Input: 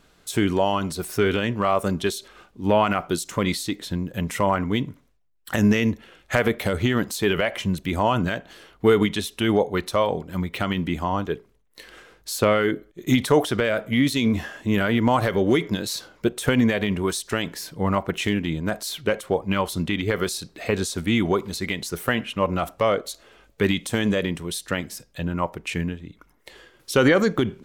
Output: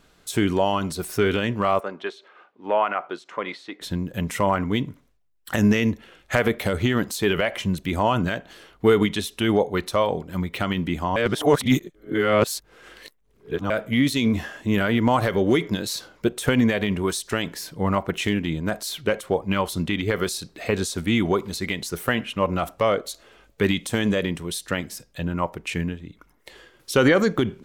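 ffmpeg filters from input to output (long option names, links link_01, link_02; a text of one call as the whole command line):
ffmpeg -i in.wav -filter_complex "[0:a]asplit=3[link_01][link_02][link_03];[link_01]afade=type=out:start_time=1.79:duration=0.02[link_04];[link_02]highpass=520,lowpass=2100,afade=type=in:start_time=1.79:duration=0.02,afade=type=out:start_time=3.8:duration=0.02[link_05];[link_03]afade=type=in:start_time=3.8:duration=0.02[link_06];[link_04][link_05][link_06]amix=inputs=3:normalize=0,asplit=3[link_07][link_08][link_09];[link_07]atrim=end=11.162[link_10];[link_08]atrim=start=11.158:end=13.702,asetpts=PTS-STARTPTS,areverse[link_11];[link_09]atrim=start=13.698[link_12];[link_10][link_11]acrossfade=duration=0.004:curve1=hsin:curve2=hsin[link_13];[link_13][link_12]acrossfade=duration=0.004:curve1=hsin:curve2=hsin" out.wav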